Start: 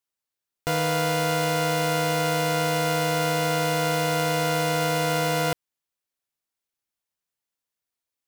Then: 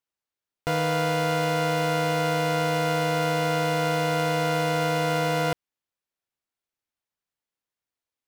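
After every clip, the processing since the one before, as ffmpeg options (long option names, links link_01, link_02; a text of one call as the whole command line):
ffmpeg -i in.wav -af "highshelf=frequency=5200:gain=-9" out.wav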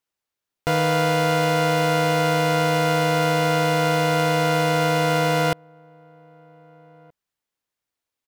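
ffmpeg -i in.wav -filter_complex "[0:a]asplit=2[link_01][link_02];[link_02]adelay=1574,volume=-28dB,highshelf=frequency=4000:gain=-35.4[link_03];[link_01][link_03]amix=inputs=2:normalize=0,volume=4.5dB" out.wav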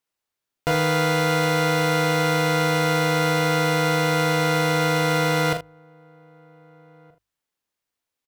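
ffmpeg -i in.wav -af "bandreject=frequency=50:width_type=h:width=6,bandreject=frequency=100:width_type=h:width=6,aecho=1:1:41|78:0.447|0.224" out.wav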